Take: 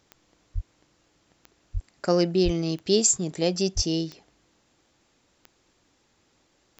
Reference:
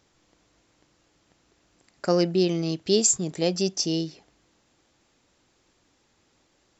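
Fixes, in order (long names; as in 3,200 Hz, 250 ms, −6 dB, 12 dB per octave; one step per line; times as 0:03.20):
click removal
high-pass at the plosives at 0:00.54/0:01.73/0:02.44/0:03.75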